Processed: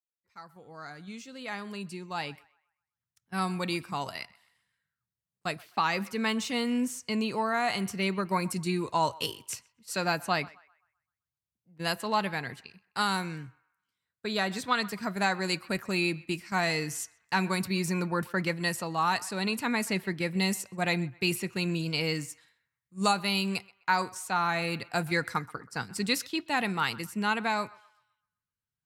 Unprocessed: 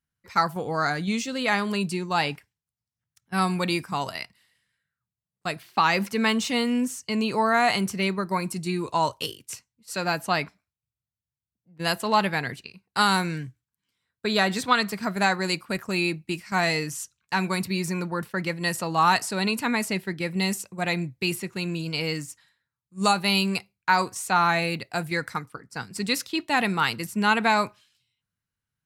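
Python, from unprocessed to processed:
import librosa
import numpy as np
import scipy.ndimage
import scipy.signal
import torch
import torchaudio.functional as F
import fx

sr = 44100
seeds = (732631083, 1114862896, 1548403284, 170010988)

y = fx.fade_in_head(x, sr, length_s=7.27)
y = fx.echo_banded(y, sr, ms=128, feedback_pct=40, hz=1400.0, wet_db=-20.0)
y = fx.rider(y, sr, range_db=4, speed_s=0.5)
y = F.gain(torch.from_numpy(y), -4.0).numpy()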